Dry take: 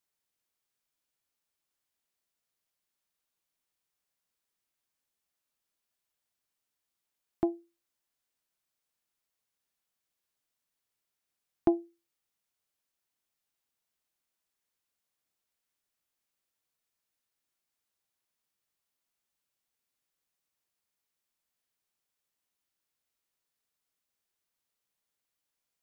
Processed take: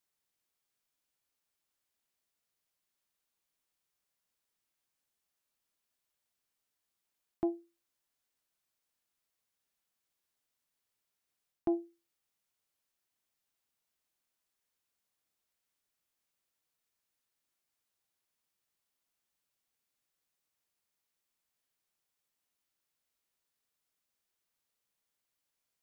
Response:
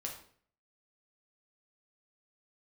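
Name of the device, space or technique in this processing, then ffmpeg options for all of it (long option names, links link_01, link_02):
compression on the reversed sound: -af "areverse,acompressor=threshold=-28dB:ratio=6,areverse"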